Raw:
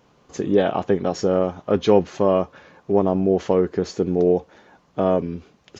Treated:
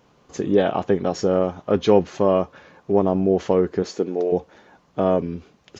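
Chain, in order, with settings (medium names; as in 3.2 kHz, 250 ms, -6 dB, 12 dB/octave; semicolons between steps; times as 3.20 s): 3.82–4.31 s: high-pass 140 Hz -> 580 Hz 12 dB/octave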